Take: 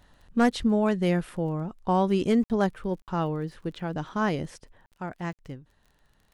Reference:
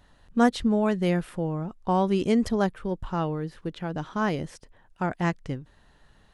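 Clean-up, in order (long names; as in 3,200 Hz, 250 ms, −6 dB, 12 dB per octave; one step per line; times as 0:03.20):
clipped peaks rebuilt −14.5 dBFS
click removal
repair the gap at 0:02.44/0:03.02/0:04.86/0:05.33, 58 ms
level correction +7.5 dB, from 0:04.90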